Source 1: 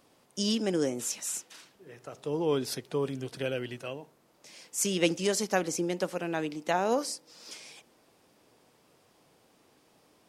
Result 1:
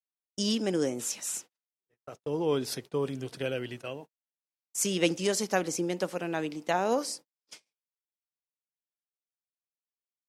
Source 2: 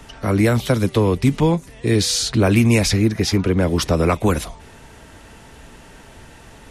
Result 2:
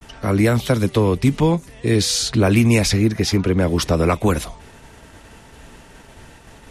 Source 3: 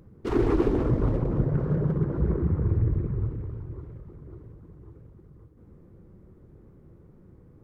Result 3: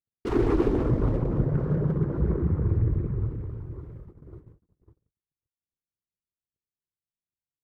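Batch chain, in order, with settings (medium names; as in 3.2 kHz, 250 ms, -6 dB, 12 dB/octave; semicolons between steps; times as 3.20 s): gate -43 dBFS, range -55 dB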